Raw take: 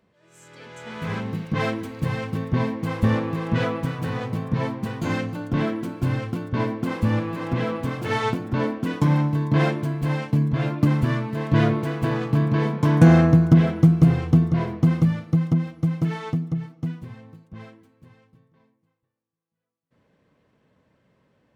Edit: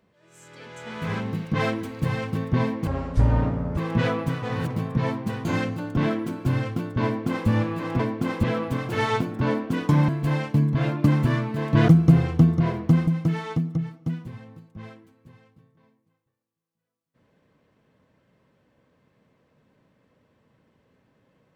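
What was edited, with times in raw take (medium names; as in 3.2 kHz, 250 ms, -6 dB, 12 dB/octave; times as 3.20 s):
2.87–3.34 s: speed 52%
3.99–4.27 s: reverse
6.61–7.05 s: copy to 7.56 s
9.21–9.87 s: delete
11.67–13.82 s: delete
15.01–15.84 s: delete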